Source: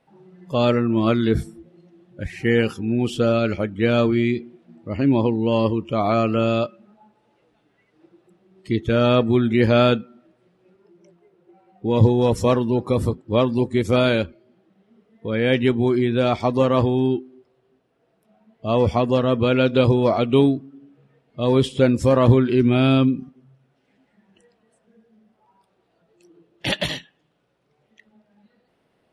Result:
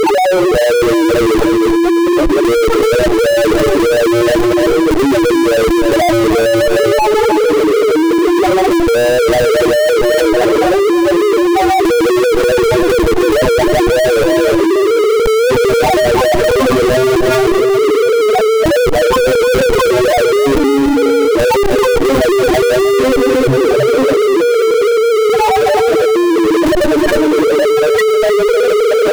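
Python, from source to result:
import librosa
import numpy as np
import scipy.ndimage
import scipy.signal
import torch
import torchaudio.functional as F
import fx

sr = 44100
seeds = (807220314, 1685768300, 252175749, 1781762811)

p1 = fx.lower_of_two(x, sr, delay_ms=6.7)
p2 = scipy.signal.sosfilt(scipy.signal.butter(2, 1200.0, 'lowpass', fs=sr, output='sos'), p1)
p3 = fx.low_shelf_res(p2, sr, hz=260.0, db=-11.5, q=3.0)
p4 = fx.hum_notches(p3, sr, base_hz=60, count=6)
p5 = fx.spec_topn(p4, sr, count=2)
p6 = fx.schmitt(p5, sr, flips_db=-34.5)
p7 = p5 + (p6 * 10.0 ** (-7.5 / 20.0))
p8 = fx.power_curve(p7, sr, exponent=0.35)
p9 = p8 + fx.echo_single(p8, sr, ms=311, db=-11.5, dry=0)
y = fx.env_flatten(p9, sr, amount_pct=100)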